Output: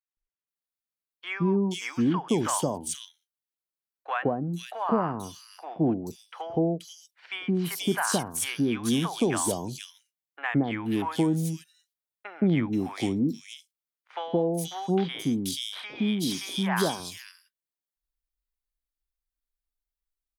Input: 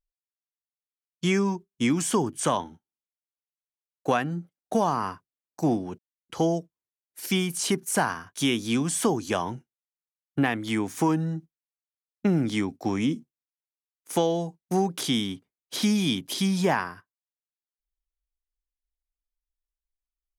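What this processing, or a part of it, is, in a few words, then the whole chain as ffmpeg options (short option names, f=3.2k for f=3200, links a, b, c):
exciter from parts: -filter_complex "[0:a]asettb=1/sr,asplit=3[a][b][c];[a]atrim=end=15.824[d];[b]atrim=start=15.82:end=16.83,asetpts=PTS-STARTPTS,afade=t=in:d=0.004:c=qsin,afade=t=out:st=1.006:d=0.004:c=qsin,highpass=f=220:p=1[e];[c]atrim=start=16.826[f];[d][e]acrossfade=d=0.004:c1=hsin:c2=qsin[g];[g][f]acrossfade=d=0.004:c1=qsin:c2=hsin,acrossover=split=760|2900[h][i][j];[h]adelay=170[k];[j]adelay=480[l];[k][i][l]amix=inputs=3:normalize=0,asplit=2[m][n];[n]highpass=f=2.7k:w=0.5412,highpass=f=2.7k:w=1.3066,asoftclip=type=tanh:threshold=-34dB,highpass=f=4.5k:w=0.5412,highpass=f=4.5k:w=1.3066,volume=-8dB[o];[m][o]amix=inputs=2:normalize=0"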